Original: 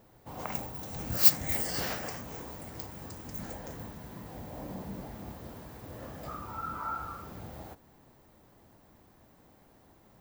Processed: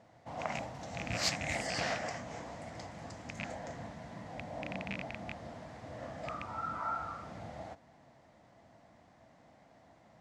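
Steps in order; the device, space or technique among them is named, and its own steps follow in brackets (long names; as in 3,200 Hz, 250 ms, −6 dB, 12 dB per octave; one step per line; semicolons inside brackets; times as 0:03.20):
car door speaker with a rattle (loose part that buzzes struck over −38 dBFS, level −26 dBFS; loudspeaker in its box 85–7,200 Hz, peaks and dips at 390 Hz −8 dB, 670 Hz +9 dB, 2,000 Hz +6 dB)
level −1.5 dB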